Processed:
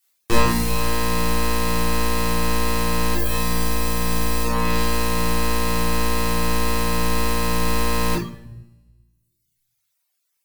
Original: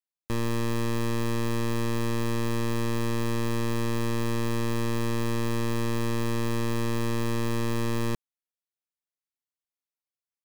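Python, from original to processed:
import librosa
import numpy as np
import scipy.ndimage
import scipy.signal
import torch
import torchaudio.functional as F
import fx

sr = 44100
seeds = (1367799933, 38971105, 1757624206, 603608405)

y = fx.octave_divider(x, sr, octaves=1, level_db=-2.0)
y = fx.rider(y, sr, range_db=4, speed_s=0.5)
y = fx.high_shelf(y, sr, hz=4100.0, db=10.5, at=(3.15, 4.45))
y = fx.echo_thinned(y, sr, ms=74, feedback_pct=75, hz=270.0, wet_db=-22.0)
y = fx.dereverb_blind(y, sr, rt60_s=1.3)
y = fx.tilt_eq(y, sr, slope=3.0)
y = fx.fold_sine(y, sr, drive_db=15, ceiling_db=-3.5)
y = fx.room_shoebox(y, sr, seeds[0], volume_m3=370.0, walls='mixed', distance_m=3.5)
y = fx.dereverb_blind(y, sr, rt60_s=1.1)
y = y * librosa.db_to_amplitude(-9.5)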